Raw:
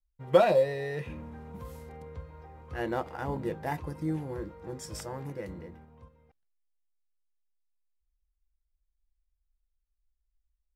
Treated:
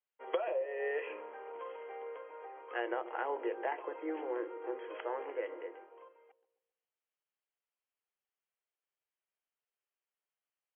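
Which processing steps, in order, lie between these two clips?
steep high-pass 370 Hz 48 dB/oct; compressor 20:1, threshold -35 dBFS, peak gain reduction 21.5 dB; brick-wall FIR low-pass 3300 Hz; dark delay 0.134 s, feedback 39%, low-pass 470 Hz, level -10 dB; gain +4 dB

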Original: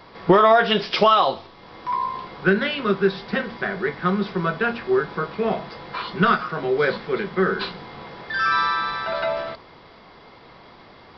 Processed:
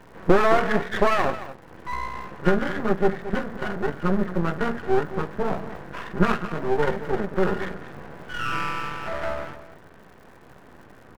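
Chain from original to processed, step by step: nonlinear frequency compression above 1400 Hz 4:1; tilt shelf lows +6 dB, about 720 Hz; crackle 290/s -45 dBFS; echo 0.221 s -13.5 dB; half-wave rectifier

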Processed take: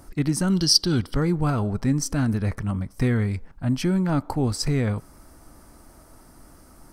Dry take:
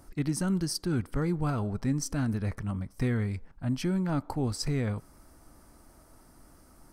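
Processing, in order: spectral gain 0.5–1.15, 2800–6000 Hz +12 dB; gain +6.5 dB

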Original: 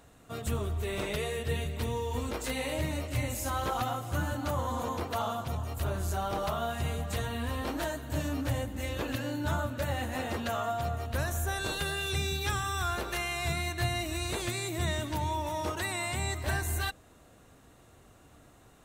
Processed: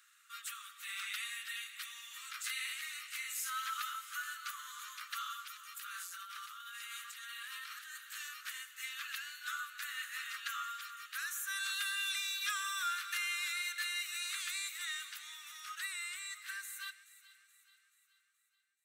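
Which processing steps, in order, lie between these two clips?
ending faded out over 4.70 s; steep high-pass 1200 Hz 96 dB/oct; 5.76–7.98 negative-ratio compressor -46 dBFS, ratio -1; thin delay 0.428 s, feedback 50%, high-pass 1700 Hz, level -16 dB; gain -1.5 dB

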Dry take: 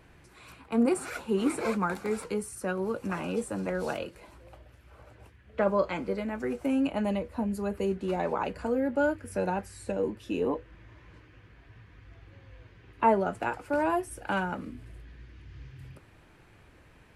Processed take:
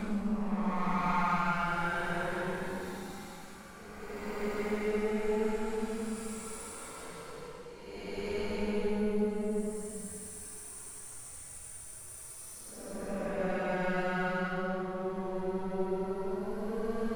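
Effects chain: half-wave gain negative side -12 dB; Paulstretch 15×, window 0.10 s, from 1.76

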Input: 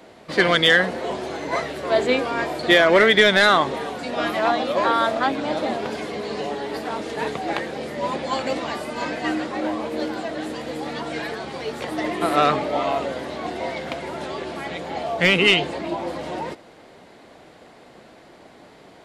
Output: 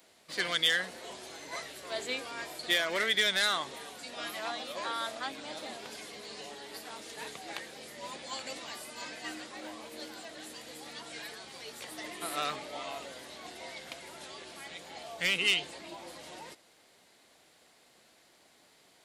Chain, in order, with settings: pre-emphasis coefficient 0.9; gain -1.5 dB

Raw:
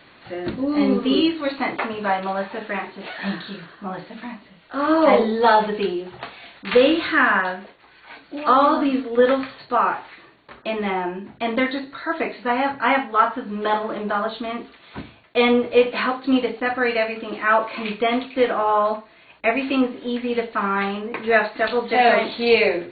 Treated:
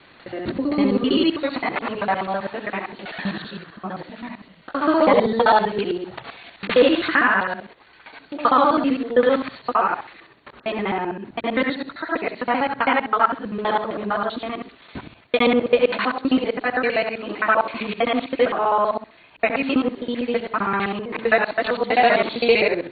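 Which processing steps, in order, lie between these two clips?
local time reversal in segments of 65 ms

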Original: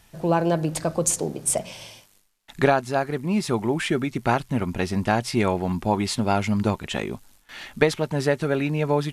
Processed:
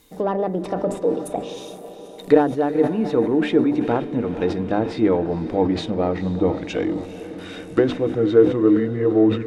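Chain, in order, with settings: speed glide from 119% -> 74%; treble ducked by the level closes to 1700 Hz, closed at -19.5 dBFS; high shelf 7800 Hz +9.5 dB; notches 50/100/150/200/250/300/350 Hz; in parallel at -4.5 dB: soft clip -18.5 dBFS, distortion -11 dB; on the sum: small resonant body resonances 310/460/3700 Hz, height 17 dB, ringing for 65 ms; on a send: diffused feedback echo 0.462 s, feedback 63%, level -13 dB; on the sum: sustainer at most 110 dB/s; gain -7.5 dB

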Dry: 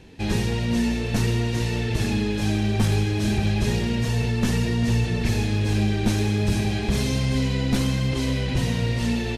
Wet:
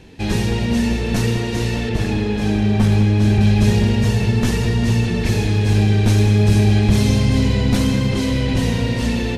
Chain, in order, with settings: 1.89–3.41 high shelf 4200 Hz -8 dB; on a send: darkening echo 0.202 s, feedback 81%, low-pass 1600 Hz, level -8.5 dB; on the sum: gain +4 dB

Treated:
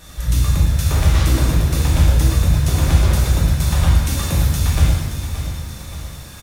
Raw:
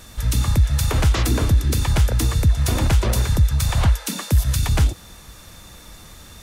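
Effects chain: in parallel at +1 dB: compressor, threshold -25 dBFS, peak gain reduction 13 dB; on the sum: feedback echo 0.574 s, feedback 48%, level -10 dB; shimmer reverb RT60 1.1 s, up +7 st, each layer -8 dB, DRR -5 dB; gain -9 dB

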